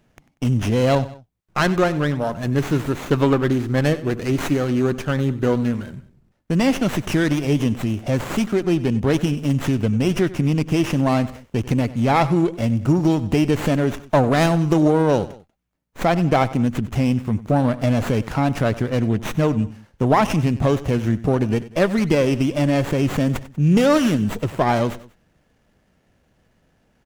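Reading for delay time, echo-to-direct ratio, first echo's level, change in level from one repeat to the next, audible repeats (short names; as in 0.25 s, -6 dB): 95 ms, -16.0 dB, -17.0 dB, -6.5 dB, 2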